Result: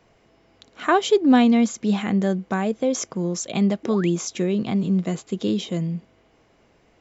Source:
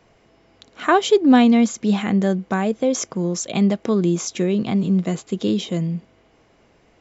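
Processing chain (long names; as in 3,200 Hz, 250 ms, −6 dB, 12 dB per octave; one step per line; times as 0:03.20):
sound drawn into the spectrogram rise, 0:03.83–0:04.10, 270–3,400 Hz −34 dBFS
level −2.5 dB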